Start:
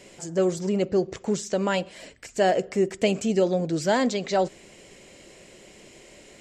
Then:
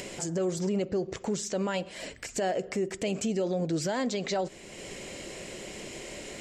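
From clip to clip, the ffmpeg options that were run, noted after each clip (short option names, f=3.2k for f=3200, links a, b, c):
-filter_complex "[0:a]asplit=2[a][b];[b]acompressor=mode=upward:threshold=-27dB:ratio=2.5,volume=0dB[c];[a][c]amix=inputs=2:normalize=0,alimiter=limit=-17dB:level=0:latency=1:release=122,volume=-5dB"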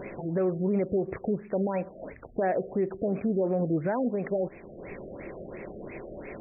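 -af "afftfilt=real='re*lt(b*sr/1024,710*pow(2700/710,0.5+0.5*sin(2*PI*2.9*pts/sr)))':imag='im*lt(b*sr/1024,710*pow(2700/710,0.5+0.5*sin(2*PI*2.9*pts/sr)))':win_size=1024:overlap=0.75,volume=2.5dB"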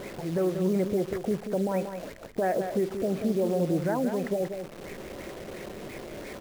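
-af "acrusher=bits=8:dc=4:mix=0:aa=0.000001,aecho=1:1:184:0.398"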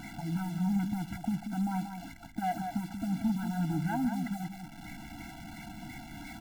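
-af "volume=23dB,asoftclip=hard,volume=-23dB,afftfilt=real='re*eq(mod(floor(b*sr/1024/330),2),0)':imag='im*eq(mod(floor(b*sr/1024/330),2),0)':win_size=1024:overlap=0.75"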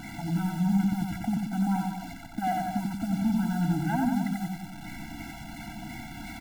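-af "aecho=1:1:90:0.708,volume=3dB"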